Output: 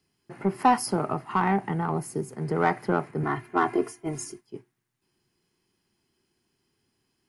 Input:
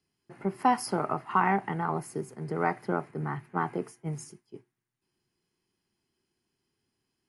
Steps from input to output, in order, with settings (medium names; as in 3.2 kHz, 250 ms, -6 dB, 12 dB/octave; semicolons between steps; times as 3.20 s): 0.78–2.33 s: peaking EQ 1.5 kHz -6 dB 3 oct; 3.23–4.41 s: comb 2.9 ms, depth 88%; in parallel at -3 dB: saturation -25 dBFS, distortion -9 dB; on the sum: trim +1.5 dB